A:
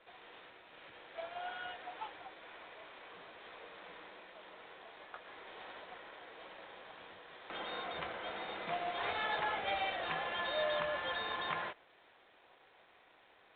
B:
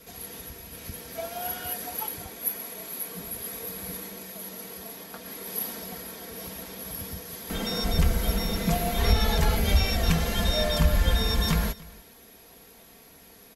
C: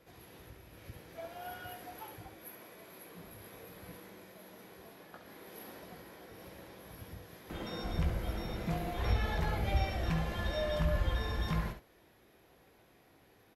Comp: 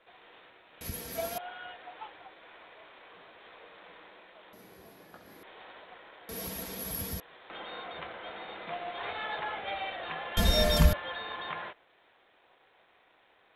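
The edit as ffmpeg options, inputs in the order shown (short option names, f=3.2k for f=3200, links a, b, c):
-filter_complex "[1:a]asplit=3[a][b][c];[0:a]asplit=5[d][e][f][g][h];[d]atrim=end=0.812[i];[a]atrim=start=0.808:end=1.382[j];[e]atrim=start=1.378:end=4.532[k];[2:a]atrim=start=4.528:end=5.432[l];[f]atrim=start=5.428:end=6.292[m];[b]atrim=start=6.288:end=7.202[n];[g]atrim=start=7.198:end=10.372[o];[c]atrim=start=10.368:end=10.932[p];[h]atrim=start=10.928[q];[i][j]acrossfade=d=0.004:c1=hsin:c2=hsin[r];[r][k]acrossfade=d=0.004:c1=hsin:c2=hsin[s];[s][l]acrossfade=d=0.004:c1=hsin:c2=hsin[t];[t][m]acrossfade=d=0.004:c1=hsin:c2=hsin[u];[u][n]acrossfade=d=0.004:c1=hsin:c2=hsin[v];[v][o]acrossfade=d=0.004:c1=hsin:c2=hsin[w];[w][p]acrossfade=d=0.004:c1=hsin:c2=hsin[x];[x][q]acrossfade=d=0.004:c1=hsin:c2=hsin"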